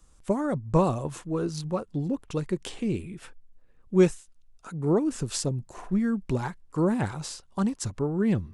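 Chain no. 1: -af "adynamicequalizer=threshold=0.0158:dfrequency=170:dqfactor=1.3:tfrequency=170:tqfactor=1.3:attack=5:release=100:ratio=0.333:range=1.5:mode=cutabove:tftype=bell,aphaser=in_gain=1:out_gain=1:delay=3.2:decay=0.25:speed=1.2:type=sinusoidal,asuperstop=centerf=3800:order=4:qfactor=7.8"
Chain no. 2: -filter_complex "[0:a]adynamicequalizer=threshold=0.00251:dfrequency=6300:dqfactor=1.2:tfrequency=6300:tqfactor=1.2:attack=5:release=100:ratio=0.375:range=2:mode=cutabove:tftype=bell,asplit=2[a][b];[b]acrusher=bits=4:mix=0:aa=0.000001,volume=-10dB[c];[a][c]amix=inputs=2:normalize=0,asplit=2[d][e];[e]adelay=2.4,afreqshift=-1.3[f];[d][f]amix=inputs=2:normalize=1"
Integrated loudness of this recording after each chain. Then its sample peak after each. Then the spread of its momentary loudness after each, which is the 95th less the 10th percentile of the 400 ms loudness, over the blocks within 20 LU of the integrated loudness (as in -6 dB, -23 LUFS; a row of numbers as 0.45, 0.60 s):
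-28.0, -28.0 LUFS; -8.0, -7.0 dBFS; 10, 10 LU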